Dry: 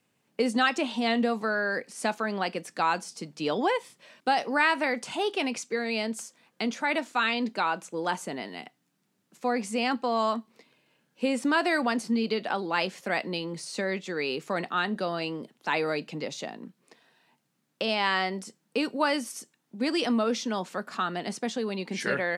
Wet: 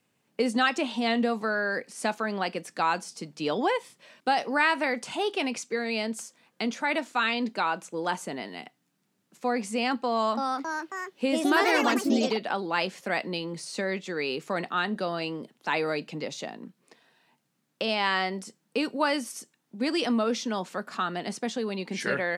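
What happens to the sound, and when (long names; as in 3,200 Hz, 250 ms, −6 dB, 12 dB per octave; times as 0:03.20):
0:10.10–0:12.48: delay with pitch and tempo change per echo 272 ms, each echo +3 semitones, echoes 3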